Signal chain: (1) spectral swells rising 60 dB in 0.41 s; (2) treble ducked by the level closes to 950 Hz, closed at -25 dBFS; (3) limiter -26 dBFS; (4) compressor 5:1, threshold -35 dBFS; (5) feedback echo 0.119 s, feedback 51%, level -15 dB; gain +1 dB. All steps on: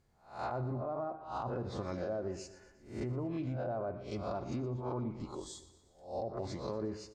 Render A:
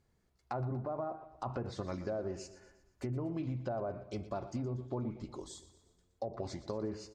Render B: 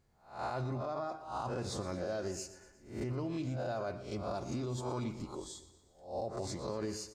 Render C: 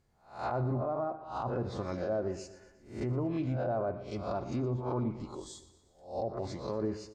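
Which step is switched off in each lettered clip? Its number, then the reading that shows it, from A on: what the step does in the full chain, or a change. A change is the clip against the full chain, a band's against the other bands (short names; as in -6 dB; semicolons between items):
1, 1 kHz band -1.5 dB; 2, 8 kHz band +7.5 dB; 4, mean gain reduction 2.5 dB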